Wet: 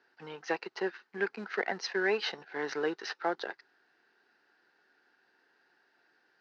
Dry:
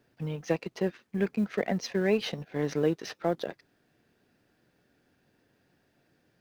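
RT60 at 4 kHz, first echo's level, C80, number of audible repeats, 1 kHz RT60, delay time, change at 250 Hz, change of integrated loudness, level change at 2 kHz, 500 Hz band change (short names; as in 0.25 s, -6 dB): none, none, none, none, none, none, -10.0 dB, -3.5 dB, +5.0 dB, -4.0 dB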